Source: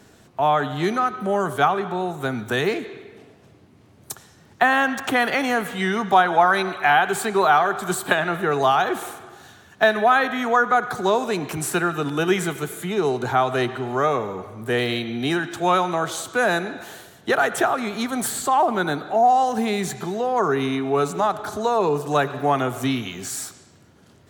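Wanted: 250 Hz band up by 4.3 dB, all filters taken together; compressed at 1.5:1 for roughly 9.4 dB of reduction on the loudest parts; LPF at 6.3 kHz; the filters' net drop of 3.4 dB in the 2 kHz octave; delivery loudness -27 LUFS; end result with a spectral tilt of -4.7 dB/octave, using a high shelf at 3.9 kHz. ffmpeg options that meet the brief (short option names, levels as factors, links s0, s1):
-af "lowpass=6300,equalizer=f=250:t=o:g=5.5,equalizer=f=2000:t=o:g=-4,highshelf=f=3900:g=-3.5,acompressor=threshold=0.0112:ratio=1.5,volume=1.26"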